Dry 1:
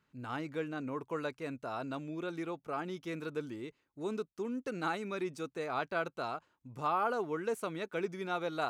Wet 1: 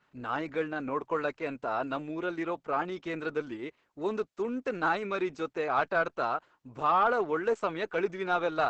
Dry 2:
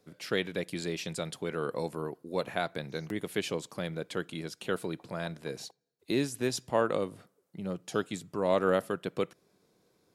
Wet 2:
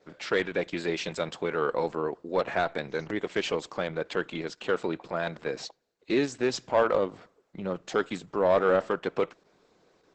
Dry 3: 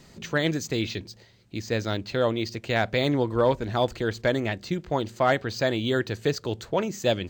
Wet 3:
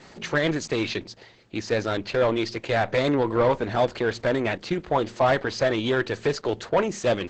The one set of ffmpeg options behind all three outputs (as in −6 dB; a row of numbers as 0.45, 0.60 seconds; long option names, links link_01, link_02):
-filter_complex "[0:a]asplit=2[link_01][link_02];[link_02]highpass=frequency=720:poles=1,volume=18dB,asoftclip=type=tanh:threshold=-10.5dB[link_03];[link_01][link_03]amix=inputs=2:normalize=0,lowpass=frequency=1600:poles=1,volume=-6dB" -ar 48000 -c:a libopus -b:a 10k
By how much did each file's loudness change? +6.5, +4.5, +1.5 LU